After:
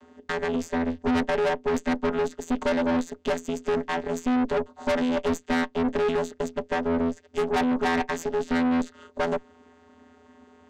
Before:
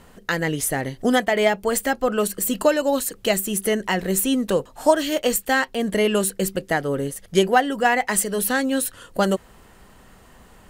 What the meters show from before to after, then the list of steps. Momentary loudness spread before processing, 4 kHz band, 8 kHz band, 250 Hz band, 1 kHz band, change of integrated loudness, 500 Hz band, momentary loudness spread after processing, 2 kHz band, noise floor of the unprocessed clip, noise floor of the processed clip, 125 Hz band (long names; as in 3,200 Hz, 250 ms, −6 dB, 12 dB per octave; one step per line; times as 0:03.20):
5 LU, −9.5 dB, −18.0 dB, −1.5 dB, −5.5 dB, −5.0 dB, −4.5 dB, 6 LU, −7.5 dB, −50 dBFS, −57 dBFS, −7.5 dB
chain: channel vocoder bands 16, square 83.5 Hz
tube saturation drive 27 dB, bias 0.75
level +6 dB